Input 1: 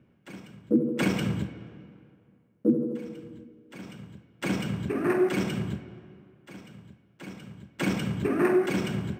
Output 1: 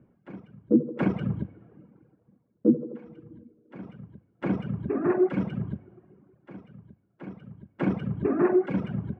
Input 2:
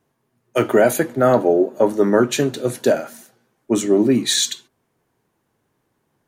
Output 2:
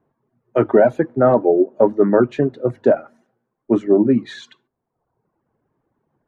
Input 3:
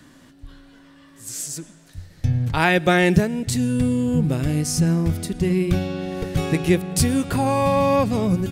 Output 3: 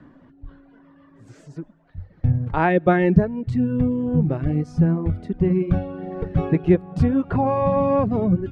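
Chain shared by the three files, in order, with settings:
reverb removal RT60 0.99 s; LPF 1200 Hz 12 dB/oct; notches 50/100 Hz; gain +2.5 dB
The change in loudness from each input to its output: +0.5, +1.0, 0.0 LU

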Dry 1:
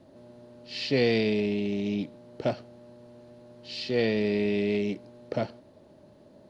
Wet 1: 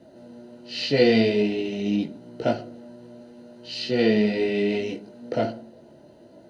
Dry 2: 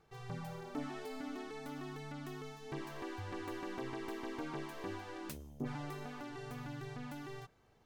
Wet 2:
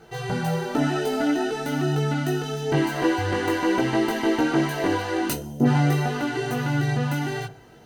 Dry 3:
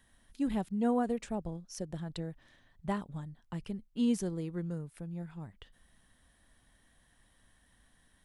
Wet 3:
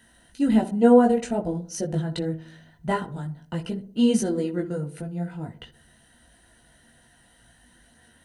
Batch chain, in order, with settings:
notch comb 1100 Hz; darkening echo 62 ms, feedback 55%, low-pass 970 Hz, level -11.5 dB; chorus voices 4, 0.45 Hz, delay 18 ms, depth 4.2 ms; ripple EQ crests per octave 1.9, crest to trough 6 dB; match loudness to -24 LUFS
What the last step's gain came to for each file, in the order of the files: +8.5, +23.5, +15.0 dB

